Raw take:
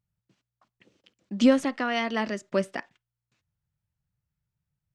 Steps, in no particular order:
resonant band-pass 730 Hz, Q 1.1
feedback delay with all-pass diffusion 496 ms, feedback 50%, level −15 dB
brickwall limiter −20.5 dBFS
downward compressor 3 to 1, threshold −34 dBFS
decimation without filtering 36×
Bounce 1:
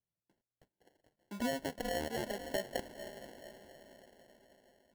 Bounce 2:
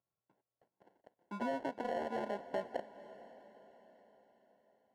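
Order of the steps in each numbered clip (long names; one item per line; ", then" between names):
resonant band-pass, then brickwall limiter, then feedback delay with all-pass diffusion, then downward compressor, then decimation without filtering
decimation without filtering, then brickwall limiter, then resonant band-pass, then downward compressor, then feedback delay with all-pass diffusion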